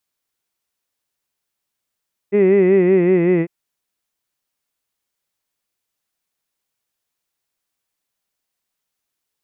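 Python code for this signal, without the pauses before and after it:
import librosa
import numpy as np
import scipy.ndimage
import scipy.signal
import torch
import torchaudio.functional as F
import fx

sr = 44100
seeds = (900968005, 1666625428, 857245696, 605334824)

y = fx.vowel(sr, seeds[0], length_s=1.15, word='hid', hz=198.0, glide_st=-2.5, vibrato_hz=5.3, vibrato_st=0.9)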